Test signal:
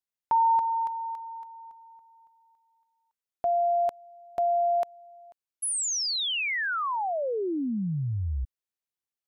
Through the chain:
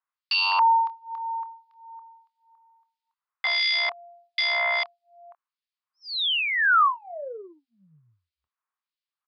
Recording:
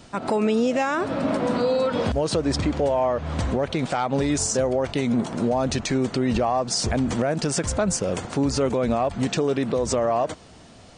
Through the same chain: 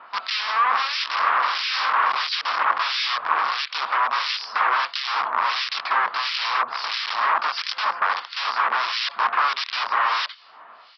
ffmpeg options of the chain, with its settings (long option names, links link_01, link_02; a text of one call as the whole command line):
ffmpeg -i in.wav -filter_complex "[0:a]asplit=2[link_01][link_02];[link_02]adelay=26,volume=-12.5dB[link_03];[link_01][link_03]amix=inputs=2:normalize=0,aresample=11025,aeval=exprs='(mod(12.6*val(0)+1,2)-1)/12.6':channel_layout=same,aresample=44100,acontrast=43,acrossover=split=2200[link_04][link_05];[link_04]aeval=exprs='val(0)*(1-1/2+1/2*cos(2*PI*1.5*n/s))':channel_layout=same[link_06];[link_05]aeval=exprs='val(0)*(1-1/2-1/2*cos(2*PI*1.5*n/s))':channel_layout=same[link_07];[link_06][link_07]amix=inputs=2:normalize=0,highpass=frequency=1100:width_type=q:width=4.1" out.wav